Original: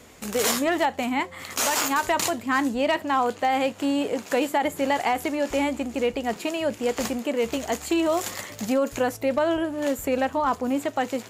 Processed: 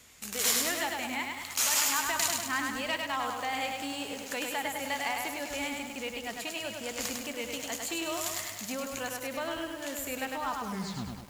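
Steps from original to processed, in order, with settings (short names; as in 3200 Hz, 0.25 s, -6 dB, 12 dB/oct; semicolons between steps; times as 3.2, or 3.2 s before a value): tape stop at the end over 0.73 s; passive tone stack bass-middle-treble 5-5-5; narrowing echo 0.19 s, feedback 53%, band-pass 670 Hz, level -10 dB; lo-fi delay 0.102 s, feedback 55%, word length 9-bit, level -3 dB; gain +4 dB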